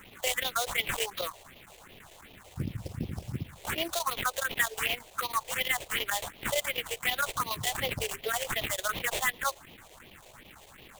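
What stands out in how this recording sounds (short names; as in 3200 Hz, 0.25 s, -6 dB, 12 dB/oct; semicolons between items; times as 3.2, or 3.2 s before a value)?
a quantiser's noise floor 8-bit, dither triangular; chopped level 9 Hz, depth 60%, duty 90%; aliases and images of a low sample rate 5200 Hz, jitter 20%; phasing stages 4, 2.7 Hz, lowest notch 210–1500 Hz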